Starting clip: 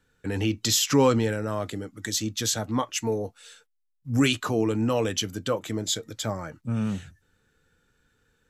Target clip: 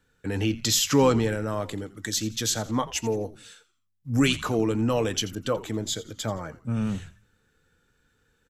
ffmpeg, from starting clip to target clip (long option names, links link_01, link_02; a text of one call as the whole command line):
ffmpeg -i in.wav -filter_complex "[0:a]asplit=2[link_01][link_02];[link_02]asplit=3[link_03][link_04][link_05];[link_03]adelay=85,afreqshift=-100,volume=-17dB[link_06];[link_04]adelay=170,afreqshift=-200,volume=-26.1dB[link_07];[link_05]adelay=255,afreqshift=-300,volume=-35.2dB[link_08];[link_06][link_07][link_08]amix=inputs=3:normalize=0[link_09];[link_01][link_09]amix=inputs=2:normalize=0,asettb=1/sr,asplit=3[link_10][link_11][link_12];[link_10]atrim=end=5.354[link_13];[link_11]atrim=start=5.35:end=6.49,asetpts=PTS-STARTPTS,afade=type=in:duration=0.004:curve=qsin,afade=type=out:start_time=1.136:duration=0.004:curve=qsin,adynamicequalizer=threshold=0.00562:dfrequency=1900:dqfactor=0.7:tfrequency=1900:tqfactor=0.7:attack=5:release=100:ratio=0.375:range=2:mode=cutabove:tftype=highshelf[link_14];[link_12]atrim=start=6.486[link_15];[link_13][link_14]acrossfade=duration=0.004:curve1=hsin:curve2=qsin[link_16];[link_16][link_15]acrossfade=duration=0.004:curve1=qsin:curve2=hsin" out.wav